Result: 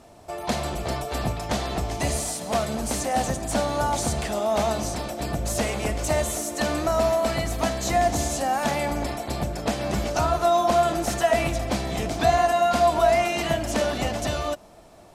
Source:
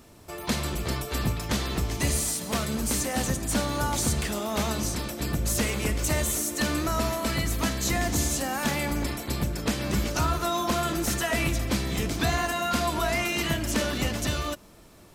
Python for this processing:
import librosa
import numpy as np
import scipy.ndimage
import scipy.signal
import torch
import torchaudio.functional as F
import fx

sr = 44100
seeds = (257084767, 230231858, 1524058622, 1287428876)

y = scipy.signal.sosfilt(scipy.signal.butter(2, 11000.0, 'lowpass', fs=sr, output='sos'), x)
y = fx.peak_eq(y, sr, hz=700.0, db=13.0, octaves=0.7)
y = y * librosa.db_to_amplitude(-1.0)